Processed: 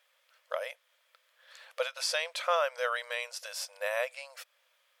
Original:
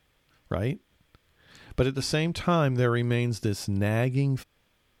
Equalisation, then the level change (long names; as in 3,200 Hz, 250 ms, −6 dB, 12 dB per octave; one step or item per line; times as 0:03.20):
linear-phase brick-wall high-pass 490 Hz
parametric band 790 Hz −8.5 dB 0.25 octaves
0.0 dB